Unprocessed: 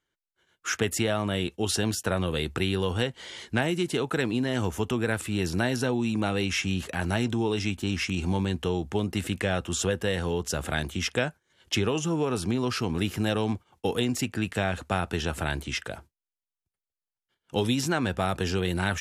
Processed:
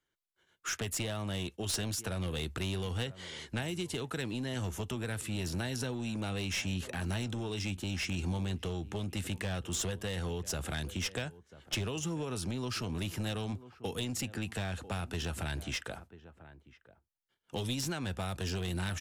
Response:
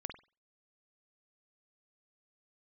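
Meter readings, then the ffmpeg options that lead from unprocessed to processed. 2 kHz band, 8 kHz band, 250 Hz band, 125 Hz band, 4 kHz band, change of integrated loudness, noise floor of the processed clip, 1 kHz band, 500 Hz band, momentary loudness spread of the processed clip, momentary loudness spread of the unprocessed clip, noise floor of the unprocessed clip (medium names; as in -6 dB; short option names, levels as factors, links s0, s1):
-9.0 dB, -4.5 dB, -9.5 dB, -6.0 dB, -6.0 dB, -8.0 dB, -76 dBFS, -11.0 dB, -11.5 dB, 4 LU, 4 LU, under -85 dBFS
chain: -filter_complex "[0:a]asplit=2[s0][s1];[s1]adelay=991.3,volume=0.1,highshelf=f=4000:g=-22.3[s2];[s0][s2]amix=inputs=2:normalize=0,acrossover=split=140|3000[s3][s4][s5];[s4]acompressor=threshold=0.0224:ratio=4[s6];[s3][s6][s5]amix=inputs=3:normalize=0,aeval=exprs='clip(val(0),-1,0.0398)':c=same,volume=0.668"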